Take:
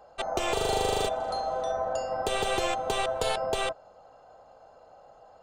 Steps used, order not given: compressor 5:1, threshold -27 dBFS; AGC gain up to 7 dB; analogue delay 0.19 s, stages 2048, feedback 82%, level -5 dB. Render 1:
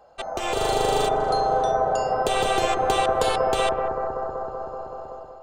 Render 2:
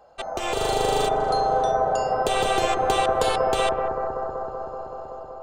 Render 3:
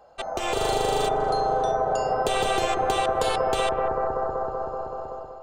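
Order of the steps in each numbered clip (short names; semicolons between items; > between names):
compressor > analogue delay > AGC; compressor > AGC > analogue delay; analogue delay > compressor > AGC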